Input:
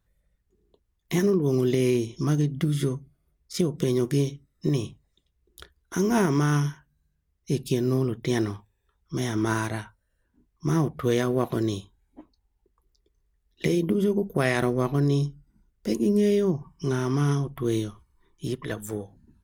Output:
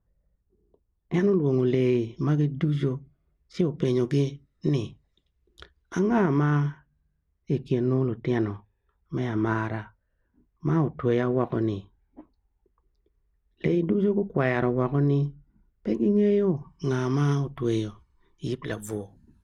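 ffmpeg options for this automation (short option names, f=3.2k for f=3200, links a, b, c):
-af "asetnsamples=n=441:p=0,asendcmd='1.14 lowpass f 2700;3.85 lowpass f 4600;5.99 lowpass f 2100;16.57 lowpass f 5500;18.73 lowpass f 12000',lowpass=1k"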